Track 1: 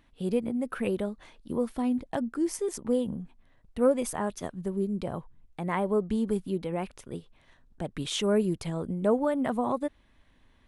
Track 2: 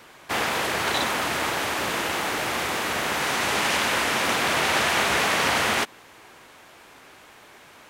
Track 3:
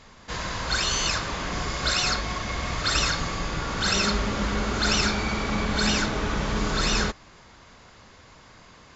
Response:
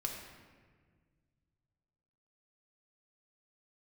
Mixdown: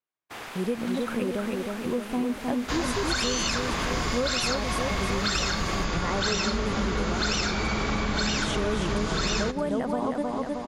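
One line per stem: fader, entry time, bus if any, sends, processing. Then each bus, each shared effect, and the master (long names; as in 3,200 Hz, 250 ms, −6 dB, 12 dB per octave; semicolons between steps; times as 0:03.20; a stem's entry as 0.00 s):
+1.5 dB, 0.35 s, no send, echo send −4 dB, no processing
−17.0 dB, 0.00 s, send −8 dB, no echo send, no processing
+2.5 dB, 2.40 s, send −15 dB, no echo send, no processing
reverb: on, RT60 1.6 s, pre-delay 3 ms
echo: repeating echo 312 ms, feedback 55%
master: downward expander −43 dBFS; downward compressor, threshold −23 dBFS, peak gain reduction 9.5 dB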